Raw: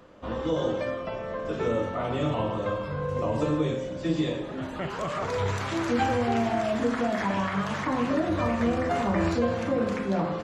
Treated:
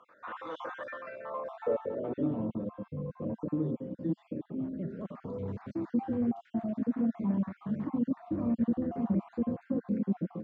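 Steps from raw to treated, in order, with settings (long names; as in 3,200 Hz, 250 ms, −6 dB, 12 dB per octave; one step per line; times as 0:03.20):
time-frequency cells dropped at random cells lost 41%
soft clipping −20 dBFS, distortion −18 dB
band-pass filter sweep 1,400 Hz → 220 Hz, 0:01.05–0:02.41
level +4 dB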